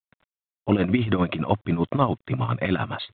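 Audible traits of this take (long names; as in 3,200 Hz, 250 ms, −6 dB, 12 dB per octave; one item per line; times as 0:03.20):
tremolo triangle 10 Hz, depth 80%
a quantiser's noise floor 10 bits, dither none
mu-law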